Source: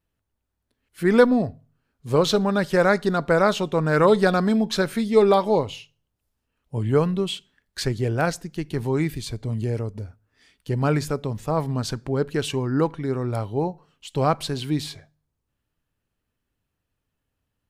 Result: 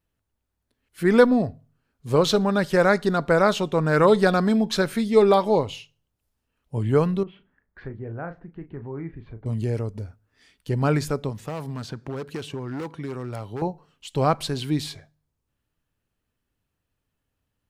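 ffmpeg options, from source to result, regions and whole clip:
ffmpeg -i in.wav -filter_complex "[0:a]asettb=1/sr,asplit=3[link_01][link_02][link_03];[link_01]atrim=end=7.234[link_04];[link_02]atrim=start=7.23:end=9.46,asetpts=PTS-STARTPTS,afade=type=in:duration=0.004:curve=qsin,afade=type=out:start_time=2.226:duration=0.004:curve=qsin,lowpass=frequency=1800:width=0.5412,lowpass=frequency=1800:width=1.3066,acompressor=threshold=-50dB:ratio=1.5:attack=3.2:release=140:knee=1:detection=peak,asplit=2[link_05][link_06];[link_06]adelay=36,volume=-10dB[link_07];[link_05][link_07]amix=inputs=2:normalize=0,atrim=end_sample=98343[link_08];[link_03]atrim=start=9.456[link_09];[link_04][link_08]acrossfade=duration=0.004:curve1=hsin:curve2=qsin[link_10];[link_10][link_09]acrossfade=duration=0.004:curve1=qsin:curve2=hsin,asettb=1/sr,asplit=3[link_11][link_12][link_13];[link_11]atrim=end=11.294[link_14];[link_12]atrim=start=11.29:end=13.62,asetpts=PTS-STARTPTS,afade=type=in:duration=0.004:curve=qsin,afade=type=out:start_time=2.326:duration=0.004:curve=qsin,volume=20.5dB,asoftclip=hard,volume=-20.5dB,highpass=80,acrossover=split=1100|3800[link_15][link_16][link_17];[link_15]acompressor=threshold=-30dB:ratio=4[link_18];[link_16]acompressor=threshold=-43dB:ratio=4[link_19];[link_17]acompressor=threshold=-49dB:ratio=4[link_20];[link_18][link_19][link_20]amix=inputs=3:normalize=0[link_21];[link_13]atrim=start=13.616[link_22];[link_14][link_21]acrossfade=duration=0.004:curve1=hsin:curve2=qsin[link_23];[link_23][link_22]acrossfade=duration=0.004:curve1=qsin:curve2=hsin" out.wav

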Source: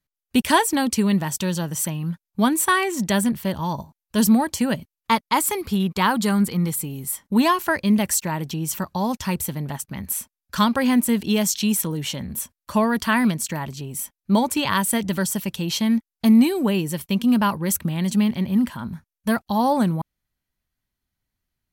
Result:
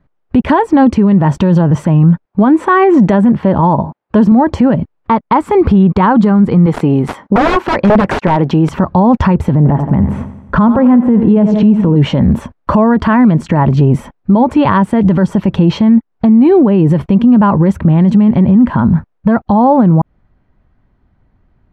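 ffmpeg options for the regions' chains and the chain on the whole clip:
ffmpeg -i in.wav -filter_complex "[0:a]asettb=1/sr,asplit=3[link_01][link_02][link_03];[link_01]atrim=end=2.254[link_04];[link_02]atrim=start=2.25:end=4.32,asetpts=PTS-STARTPTS,afade=type=in:duration=0.004:curve=qsin,afade=type=out:start_time=2.066:duration=0.004:curve=qsin,highpass=frequency=190:poles=1,highshelf=frequency=7000:gain=-9,acrusher=bits=9:mode=log:mix=0:aa=0.000001[link_05];[link_03]atrim=start=4.316[link_06];[link_04][link_05]acrossfade=duration=0.004:curve1=hsin:curve2=qsin[link_07];[link_07][link_06]acrossfade=duration=0.004:curve1=qsin:curve2=hsin,asettb=1/sr,asplit=3[link_08][link_09][link_10];[link_08]atrim=end=6.664[link_11];[link_09]atrim=start=6.66:end=8.69,asetpts=PTS-STARTPTS,afade=type=in:duration=0.004:curve=qsin,afade=type=out:start_time=2.026:duration=0.004:curve=qsin,highpass=frequency=370:poles=1,aeval=exprs='(mod(8.91*val(0)+1,2)-1)/8.91':channel_layout=same[link_12];[link_10]atrim=start=8.686[link_13];[link_11][link_12]acrossfade=duration=0.004:curve1=hsin:curve2=qsin[link_14];[link_14][link_13]acrossfade=duration=0.004:curve1=qsin:curve2=hsin,asettb=1/sr,asplit=3[link_15][link_16][link_17];[link_15]atrim=end=9.554[link_18];[link_16]atrim=start=9.55:end=11.96,asetpts=PTS-STARTPTS,afade=type=in:duration=0.004:curve=qsin,afade=type=out:start_time=2.406:duration=0.004:curve=qsin,lowpass=frequency=1100:poles=1,aecho=1:1:86|172|258|344|430|516:0.2|0.112|0.0626|0.035|0.0196|0.011,atrim=end_sample=106281[link_19];[link_17]atrim=start=11.956[link_20];[link_18][link_19]acrossfade=duration=0.004:curve1=hsin:curve2=qsin[link_21];[link_21][link_20]acrossfade=duration=0.004:curve1=qsin:curve2=hsin,acompressor=threshold=-27dB:ratio=10,lowpass=1000,alimiter=level_in=29.5dB:limit=-1dB:release=50:level=0:latency=1,volume=-1dB" out.wav

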